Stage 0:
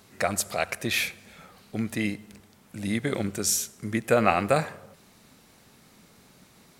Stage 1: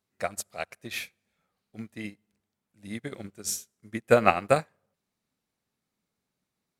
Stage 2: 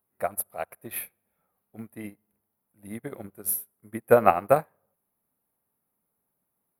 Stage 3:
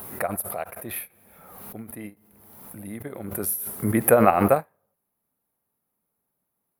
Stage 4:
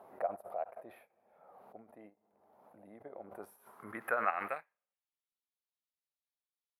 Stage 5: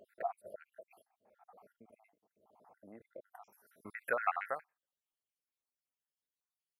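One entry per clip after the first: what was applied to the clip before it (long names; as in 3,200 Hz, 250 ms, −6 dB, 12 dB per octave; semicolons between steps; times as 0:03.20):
expander for the loud parts 2.5 to 1, over −38 dBFS; level +4 dB
drawn EQ curve 200 Hz 0 dB, 930 Hz +6 dB, 7,100 Hz −20 dB, 11,000 Hz +15 dB; level −1.5 dB
background raised ahead of every attack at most 37 dB per second
band-pass filter sweep 680 Hz → 3,800 Hz, 0:03.19–0:05.31; level −5 dB
time-frequency cells dropped at random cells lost 65%; level +1 dB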